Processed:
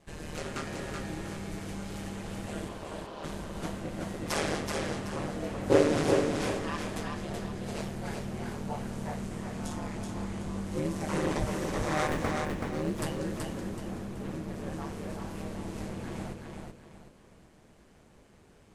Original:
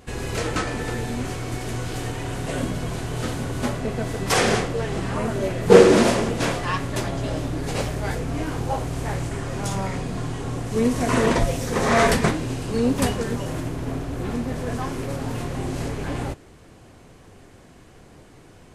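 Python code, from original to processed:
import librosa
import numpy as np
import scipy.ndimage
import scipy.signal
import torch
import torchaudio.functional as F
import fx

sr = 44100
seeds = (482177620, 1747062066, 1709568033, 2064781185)

y = fx.median_filter(x, sr, points=9, at=(12.07, 12.85))
y = y * np.sin(2.0 * np.pi * 76.0 * np.arange(len(y)) / sr)
y = fx.cabinet(y, sr, low_hz=340.0, low_slope=12, high_hz=5000.0, hz=(620.0, 1000.0, 2100.0), db=(6, 8, -7), at=(2.68, 3.23), fade=0.02)
y = fx.doubler(y, sr, ms=20.0, db=-4, at=(10.14, 10.8))
y = fx.echo_feedback(y, sr, ms=378, feedback_pct=33, wet_db=-4.0)
y = y * librosa.db_to_amplitude(-9.0)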